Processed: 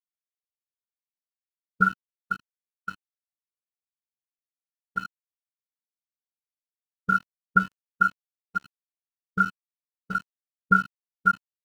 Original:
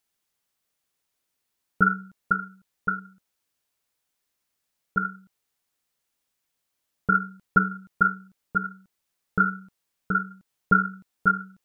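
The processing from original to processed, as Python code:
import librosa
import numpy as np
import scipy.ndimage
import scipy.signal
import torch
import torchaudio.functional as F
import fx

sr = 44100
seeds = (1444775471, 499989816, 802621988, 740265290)

y = fx.peak_eq(x, sr, hz=1100.0, db=-11.5, octaves=0.27, at=(1.89, 2.94))
y = np.where(np.abs(y) >= 10.0 ** (-24.5 / 20.0), y, 0.0)
y = fx.spectral_expand(y, sr, expansion=1.5)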